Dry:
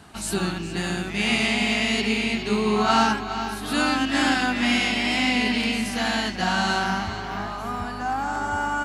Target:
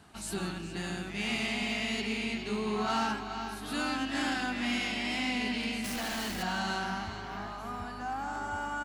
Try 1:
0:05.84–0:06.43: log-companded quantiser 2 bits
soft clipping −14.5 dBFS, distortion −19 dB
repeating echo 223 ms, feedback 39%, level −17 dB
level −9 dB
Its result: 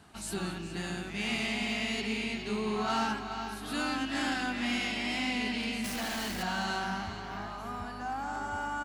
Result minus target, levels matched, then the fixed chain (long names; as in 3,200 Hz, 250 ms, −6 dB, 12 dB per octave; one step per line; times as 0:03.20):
echo 66 ms late
0:05.84–0:06.43: log-companded quantiser 2 bits
soft clipping −14.5 dBFS, distortion −19 dB
repeating echo 157 ms, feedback 39%, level −17 dB
level −9 dB